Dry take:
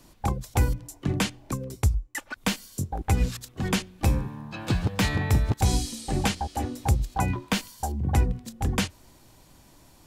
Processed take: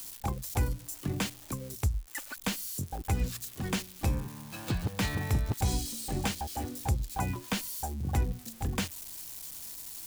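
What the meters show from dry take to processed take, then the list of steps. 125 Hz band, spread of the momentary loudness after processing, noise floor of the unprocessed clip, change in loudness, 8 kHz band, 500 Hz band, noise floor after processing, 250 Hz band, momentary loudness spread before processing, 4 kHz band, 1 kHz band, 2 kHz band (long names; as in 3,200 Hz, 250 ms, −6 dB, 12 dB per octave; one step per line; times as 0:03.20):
−6.5 dB, 9 LU, −55 dBFS, −6.0 dB, −2.5 dB, −6.5 dB, −50 dBFS, −6.5 dB, 8 LU, −5.5 dB, −6.5 dB, −6.5 dB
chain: spike at every zero crossing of −28.5 dBFS
level −6.5 dB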